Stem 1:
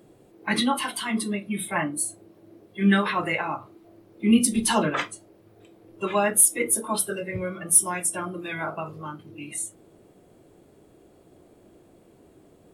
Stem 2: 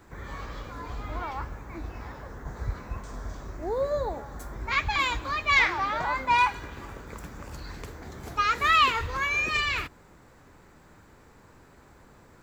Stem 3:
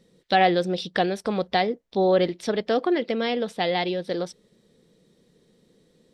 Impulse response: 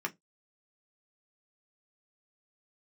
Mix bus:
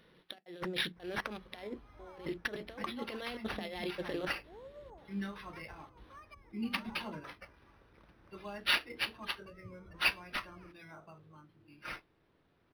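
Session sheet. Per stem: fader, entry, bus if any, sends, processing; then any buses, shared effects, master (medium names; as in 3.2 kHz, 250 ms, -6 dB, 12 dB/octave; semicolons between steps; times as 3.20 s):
-10.5 dB, 2.30 s, no send, bass shelf 240 Hz +9 dB
-9.0 dB, 0.85 s, no send, low-pass that closes with the level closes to 350 Hz, closed at -21.5 dBFS
+0.5 dB, 0.00 s, send -8 dB, compressor with a negative ratio -29 dBFS, ratio -0.5; trance gate "xxxxx.xxxxxx." 196 bpm -60 dB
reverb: on, pre-delay 3 ms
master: pre-emphasis filter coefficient 0.8; decimation joined by straight lines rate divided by 6×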